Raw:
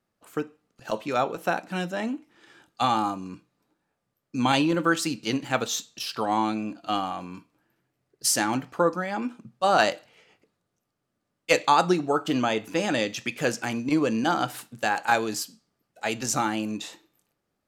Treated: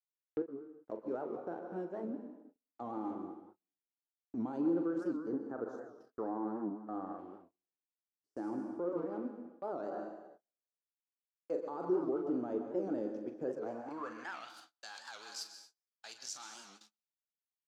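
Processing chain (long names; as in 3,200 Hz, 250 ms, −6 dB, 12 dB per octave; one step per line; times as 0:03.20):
flat-topped bell 2,700 Hz −13 dB 1.2 octaves
dead-zone distortion −39.5 dBFS
double-tracking delay 42 ms −11 dB
dense smooth reverb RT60 1.1 s, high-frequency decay 0.95×, pre-delay 110 ms, DRR 8.5 dB
brickwall limiter −18.5 dBFS, peak gain reduction 11.5 dB
band-pass filter sweep 370 Hz → 4,000 Hz, 0:13.54–0:14.57
noise gate −55 dBFS, range −34 dB
0:05.17–0:07.19: high shelf with overshoot 2,000 Hz −6.5 dB, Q 3
wow of a warped record 78 rpm, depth 160 cents
level −2 dB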